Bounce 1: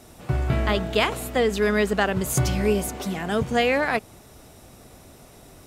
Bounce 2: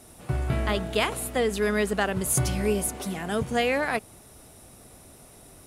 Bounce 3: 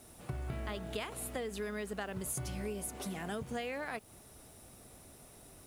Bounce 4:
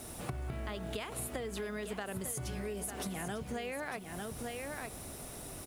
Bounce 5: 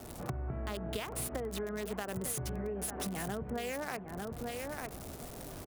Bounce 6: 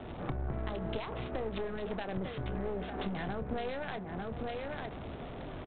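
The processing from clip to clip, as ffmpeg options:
-af "equalizer=f=10k:w=2.6:g=11,volume=-3.5dB"
-af "acompressor=threshold=-30dB:ratio=6,acrusher=bits=9:mix=0:aa=0.000001,volume=-6dB"
-af "aecho=1:1:899:0.299,acompressor=threshold=-47dB:ratio=5,volume=10dB"
-filter_complex "[0:a]aecho=1:1:775:0.133,acrossover=split=160|1700[a][b][c];[c]acrusher=bits=6:mix=0:aa=0.000001[d];[a][b][d]amix=inputs=3:normalize=0,volume=1.5dB"
-filter_complex "[0:a]aresample=8000,aeval=exprs='clip(val(0),-1,0.00708)':c=same,aresample=44100,asplit=2[a][b];[b]adelay=27,volume=-14dB[c];[a][c]amix=inputs=2:normalize=0,volume=4dB"

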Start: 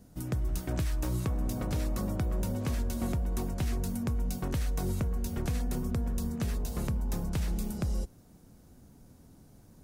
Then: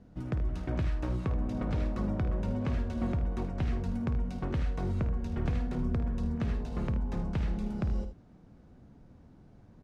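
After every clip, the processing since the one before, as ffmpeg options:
-filter_complex "[0:a]lowpass=2.7k,asplit=2[a][b];[b]aecho=0:1:53|78:0.282|0.251[c];[a][c]amix=inputs=2:normalize=0"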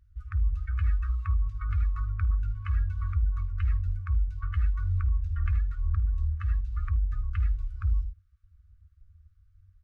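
-af "afftdn=nr=20:nf=-43,afftfilt=real='re*(1-between(b*sr/4096,100,1100))':imag='im*(1-between(b*sr/4096,100,1100))':win_size=4096:overlap=0.75,volume=6dB"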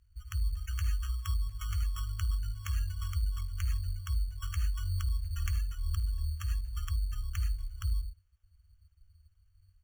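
-af "acrusher=samples=10:mix=1:aa=0.000001,highshelf=f=2.2k:g=9.5,volume=-5.5dB"

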